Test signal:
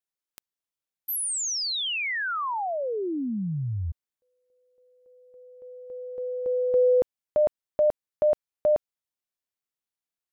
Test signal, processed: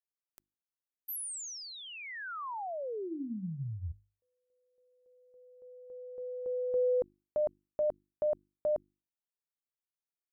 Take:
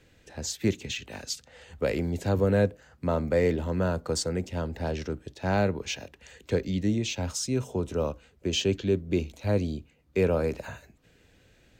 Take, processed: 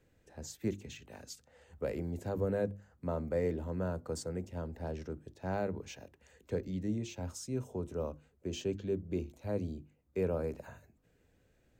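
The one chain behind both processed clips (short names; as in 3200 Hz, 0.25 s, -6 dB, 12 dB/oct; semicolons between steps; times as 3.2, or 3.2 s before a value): bell 3500 Hz -9.5 dB 2.1 oct; notches 50/100/150/200/250/300/350 Hz; gain -8 dB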